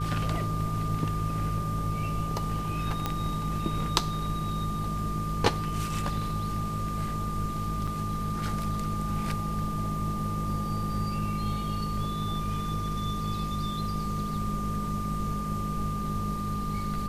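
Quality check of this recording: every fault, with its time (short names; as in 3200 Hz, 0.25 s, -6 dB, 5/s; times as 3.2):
buzz 50 Hz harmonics 9 -36 dBFS
tone 1200 Hz -34 dBFS
3.06 pop -14 dBFS
7.87–7.88 gap 5.7 ms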